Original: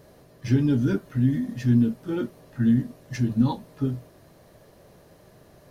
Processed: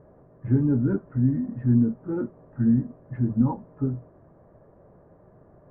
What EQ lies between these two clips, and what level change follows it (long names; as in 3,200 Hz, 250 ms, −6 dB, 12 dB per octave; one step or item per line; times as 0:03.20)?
low-pass filter 1,400 Hz 24 dB per octave
high-frequency loss of the air 280 metres
0.0 dB